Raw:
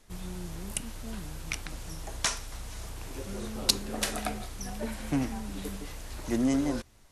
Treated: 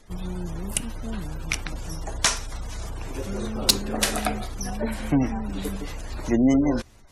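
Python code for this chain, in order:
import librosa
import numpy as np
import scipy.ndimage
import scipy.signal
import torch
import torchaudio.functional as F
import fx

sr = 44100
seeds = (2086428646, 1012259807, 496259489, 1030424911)

y = fx.spec_gate(x, sr, threshold_db=-30, keep='strong')
y = np.clip(10.0 ** (12.0 / 20.0) * y, -1.0, 1.0) / 10.0 ** (12.0 / 20.0)
y = y * 10.0 ** (7.5 / 20.0)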